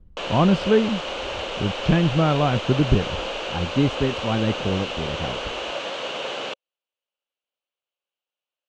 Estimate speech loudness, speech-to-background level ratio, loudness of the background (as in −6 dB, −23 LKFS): −23.0 LKFS, 6.0 dB, −29.0 LKFS